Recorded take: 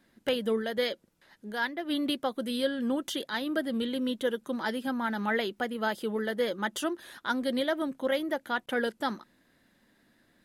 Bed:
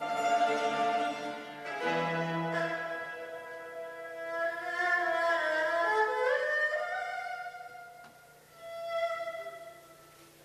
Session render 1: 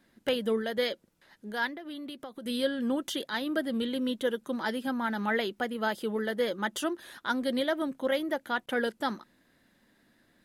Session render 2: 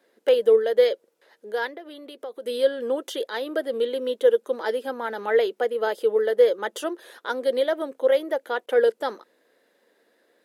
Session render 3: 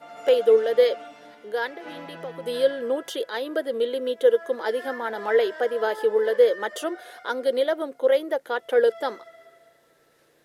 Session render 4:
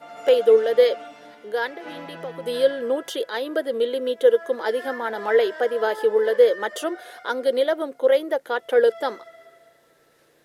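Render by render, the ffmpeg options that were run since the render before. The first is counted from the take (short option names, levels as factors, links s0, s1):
-filter_complex "[0:a]asettb=1/sr,asplit=3[s0][s1][s2];[s0]atrim=end=1.744[s3];[s1]atrim=start=1.74:end=2.46,asetpts=PTS-STARTPTS,afade=t=in:d=0.004:c=qsin,afade=t=out:st=0.716:d=0.004:c=qsin,acompressor=threshold=0.0126:ratio=6:attack=3.2:release=140:knee=1:detection=peak[s4];[s2]atrim=start=2.456[s5];[s3][s4]acrossfade=d=0.004:c1=hsin:c2=qsin[s6];[s6][s5]acrossfade=d=0.004:c1=qsin:c2=hsin"
-af "highpass=f=460:t=q:w=4.9"
-filter_complex "[1:a]volume=0.335[s0];[0:a][s0]amix=inputs=2:normalize=0"
-af "volume=1.26"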